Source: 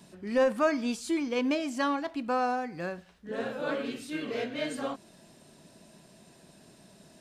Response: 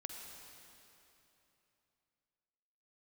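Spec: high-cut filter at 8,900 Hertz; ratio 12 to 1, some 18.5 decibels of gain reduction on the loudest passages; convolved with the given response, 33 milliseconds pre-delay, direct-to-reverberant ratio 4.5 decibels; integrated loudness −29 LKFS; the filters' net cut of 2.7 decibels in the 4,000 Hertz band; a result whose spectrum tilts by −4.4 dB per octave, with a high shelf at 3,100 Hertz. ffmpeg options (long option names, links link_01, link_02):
-filter_complex "[0:a]lowpass=8900,highshelf=frequency=3100:gain=5,equalizer=frequency=4000:width_type=o:gain=-7.5,acompressor=threshold=-39dB:ratio=12,asplit=2[link_01][link_02];[1:a]atrim=start_sample=2205,adelay=33[link_03];[link_02][link_03]afir=irnorm=-1:irlink=0,volume=-2dB[link_04];[link_01][link_04]amix=inputs=2:normalize=0,volume=13.5dB"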